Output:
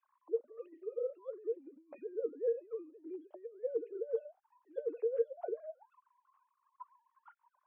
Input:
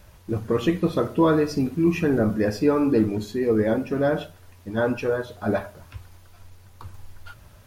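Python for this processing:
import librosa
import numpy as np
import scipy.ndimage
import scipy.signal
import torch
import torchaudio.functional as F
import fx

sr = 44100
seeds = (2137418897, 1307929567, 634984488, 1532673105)

y = fx.sine_speech(x, sr)
y = fx.over_compress(y, sr, threshold_db=-28.0, ratio=-1.0)
y = fx.auto_wah(y, sr, base_hz=460.0, top_hz=1100.0, q=16.0, full_db=-24.0, direction='down')
y = y * 10.0 ** (-1.5 / 20.0)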